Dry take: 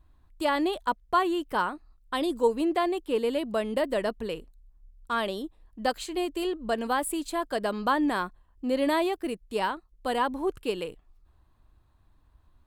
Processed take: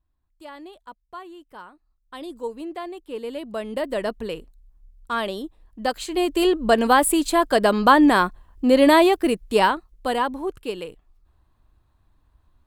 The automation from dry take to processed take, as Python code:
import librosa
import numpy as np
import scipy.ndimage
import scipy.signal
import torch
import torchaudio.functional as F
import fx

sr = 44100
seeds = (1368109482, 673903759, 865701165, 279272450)

y = fx.gain(x, sr, db=fx.line((1.73, -14.5), (2.28, -7.0), (2.97, -7.0), (4.1, 3.0), (5.93, 3.0), (6.44, 11.0), (9.59, 11.0), (10.48, 0.5)))